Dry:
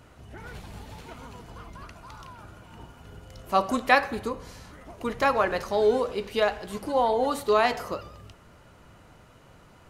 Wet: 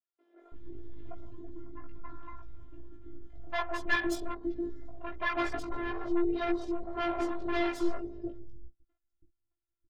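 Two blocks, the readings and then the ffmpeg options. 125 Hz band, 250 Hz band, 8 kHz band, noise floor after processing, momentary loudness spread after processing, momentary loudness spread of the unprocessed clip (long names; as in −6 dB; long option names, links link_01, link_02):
−7.5 dB, +0.5 dB, −7.5 dB, −85 dBFS, 21 LU, 22 LU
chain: -filter_complex "[0:a]acrossover=split=4400[link_01][link_02];[link_02]acompressor=threshold=-55dB:ratio=4:attack=1:release=60[link_03];[link_01][link_03]amix=inputs=2:normalize=0,afwtdn=0.0126,agate=range=-36dB:threshold=-51dB:ratio=16:detection=peak,lowpass=5900,lowshelf=frequency=320:gain=12,asplit=2[link_04][link_05];[link_05]acompressor=threshold=-37dB:ratio=6,volume=0dB[link_06];[link_04][link_06]amix=inputs=2:normalize=0,flanger=delay=4:depth=1.2:regen=6:speed=0.7:shape=triangular,afftfilt=real='hypot(re,im)*cos(PI*b)':imag='0':win_size=512:overlap=0.75,aeval=exprs='(tanh(35.5*val(0)+0.6)-tanh(0.6))/35.5':channel_layout=same,asplit=2[link_07][link_08];[link_08]adelay=18,volume=-2.5dB[link_09];[link_07][link_09]amix=inputs=2:normalize=0,acrossover=split=470|4600[link_10][link_11][link_12];[link_12]adelay=200[link_13];[link_10]adelay=330[link_14];[link_14][link_11][link_13]amix=inputs=3:normalize=0,volume=4.5dB"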